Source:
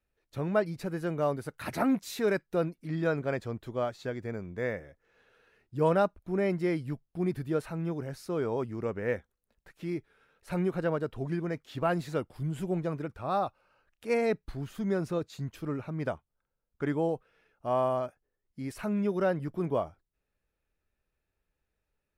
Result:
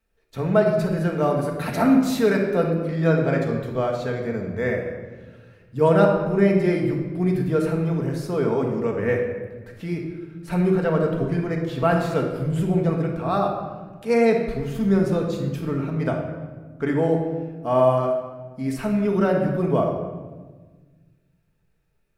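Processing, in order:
rectangular room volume 1,200 cubic metres, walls mixed, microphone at 1.6 metres
level +5.5 dB

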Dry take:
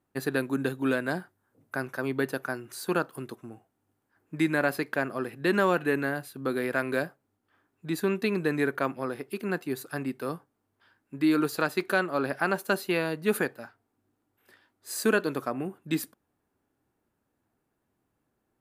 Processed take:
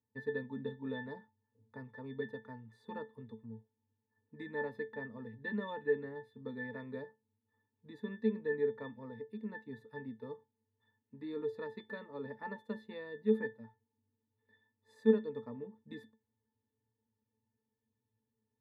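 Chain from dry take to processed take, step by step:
resonances in every octave A, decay 0.18 s
level +2 dB

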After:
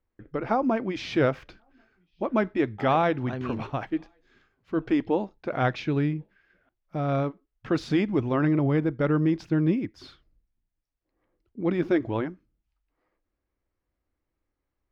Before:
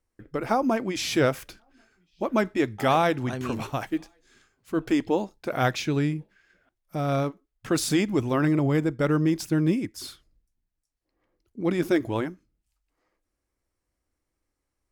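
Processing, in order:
high-frequency loss of the air 250 metres

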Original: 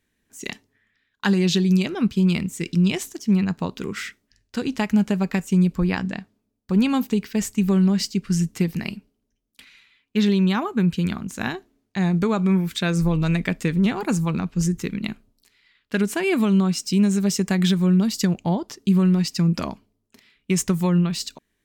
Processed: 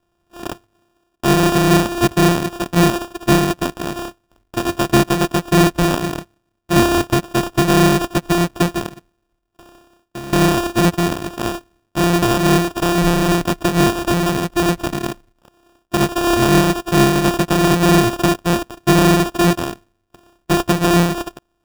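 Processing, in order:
samples sorted by size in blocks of 128 samples
0:08.86–0:10.33: downward compressor 4 to 1, threshold −37 dBFS, peak gain reduction 17.5 dB
decimation without filtering 21×
level +5 dB

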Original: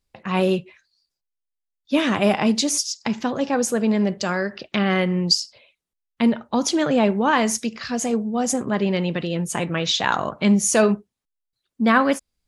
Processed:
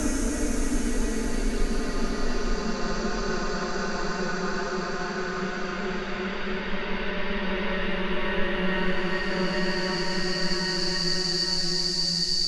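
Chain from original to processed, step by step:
reverb reduction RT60 0.62 s
extreme stretch with random phases 8×, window 1.00 s, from 0:03.79
frequency shifter −190 Hz
level −2.5 dB

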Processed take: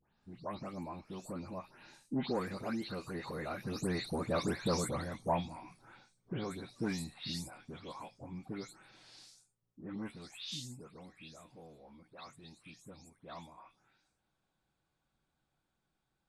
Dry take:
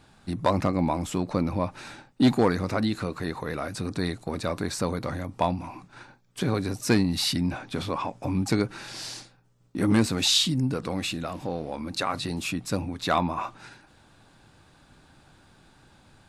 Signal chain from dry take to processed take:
every frequency bin delayed by itself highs late, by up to 240 ms
source passing by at 0:04.43, 14 m/s, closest 11 metres
level −3.5 dB

